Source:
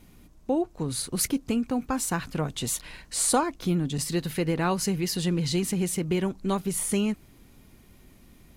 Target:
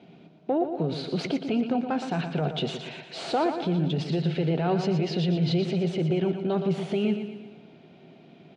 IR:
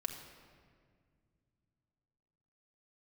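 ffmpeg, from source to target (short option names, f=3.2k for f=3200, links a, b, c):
-filter_complex "[0:a]aeval=exprs='(tanh(7.94*val(0)+0.4)-tanh(0.4))/7.94':c=same,highpass=f=130:w=0.5412,highpass=f=130:w=1.3066,equalizer=f=160:t=q:w=4:g=10,equalizer=f=390:t=q:w=4:g=8,equalizer=f=680:t=q:w=4:g=10,equalizer=f=1.1k:t=q:w=4:g=-10,equalizer=f=1.9k:t=q:w=4:g=-9,lowpass=f=3.5k:w=0.5412,lowpass=f=3.5k:w=1.3066,asplit=2[a][b];[1:a]atrim=start_sample=2205,afade=t=out:st=0.31:d=0.01,atrim=end_sample=14112[c];[b][c]afir=irnorm=-1:irlink=0,volume=-14dB[d];[a][d]amix=inputs=2:normalize=0,alimiter=limit=-20.5dB:level=0:latency=1:release=19,lowshelf=f=330:g=-7.5,asplit=2[e][f];[f]aecho=0:1:118|236|354|472|590|708:0.376|0.192|0.0978|0.0499|0.0254|0.013[g];[e][g]amix=inputs=2:normalize=0,volume=6dB"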